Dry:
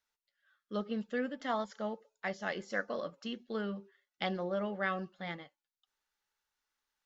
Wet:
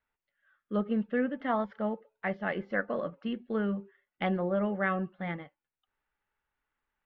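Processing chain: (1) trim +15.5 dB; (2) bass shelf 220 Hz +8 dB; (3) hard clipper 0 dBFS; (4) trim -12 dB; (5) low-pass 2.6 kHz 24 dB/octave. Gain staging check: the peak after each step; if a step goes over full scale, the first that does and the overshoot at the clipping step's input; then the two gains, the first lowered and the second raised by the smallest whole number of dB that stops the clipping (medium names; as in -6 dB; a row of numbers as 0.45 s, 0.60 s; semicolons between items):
-4.5 dBFS, -4.0 dBFS, -4.0 dBFS, -16.0 dBFS, -16.0 dBFS; nothing clips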